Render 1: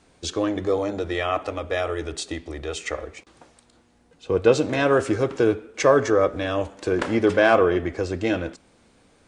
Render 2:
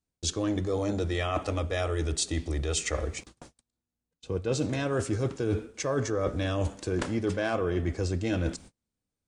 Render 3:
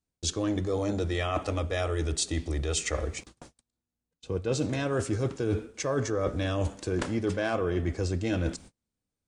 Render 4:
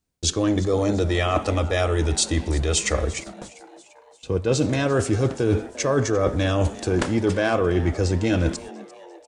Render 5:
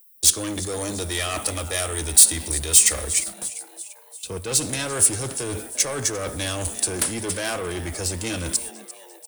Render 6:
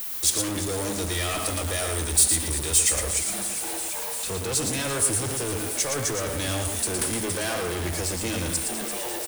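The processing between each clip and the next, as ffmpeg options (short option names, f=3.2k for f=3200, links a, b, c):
-af "agate=range=-36dB:threshold=-50dB:ratio=16:detection=peak,bass=f=250:g=11,treble=f=4k:g=10,areverse,acompressor=threshold=-25dB:ratio=10,areverse"
-af anull
-filter_complex "[0:a]asplit=5[a][b][c][d][e];[b]adelay=346,afreqshift=130,volume=-19dB[f];[c]adelay=692,afreqshift=260,volume=-24.4dB[g];[d]adelay=1038,afreqshift=390,volume=-29.7dB[h];[e]adelay=1384,afreqshift=520,volume=-35.1dB[i];[a][f][g][h][i]amix=inputs=5:normalize=0,volume=7.5dB"
-filter_complex "[0:a]acrossover=split=110|380|2400[a][b][c][d];[d]aexciter=amount=6.2:drive=7.4:freq=9.3k[e];[a][b][c][e]amix=inputs=4:normalize=0,asoftclip=type=tanh:threshold=-18.5dB,crystalizer=i=7.5:c=0,volume=-6.5dB"
-af "aeval=exprs='val(0)+0.5*0.0944*sgn(val(0))':c=same,acrusher=bits=5:mix=0:aa=0.000001,aecho=1:1:115:0.531,volume=-7.5dB"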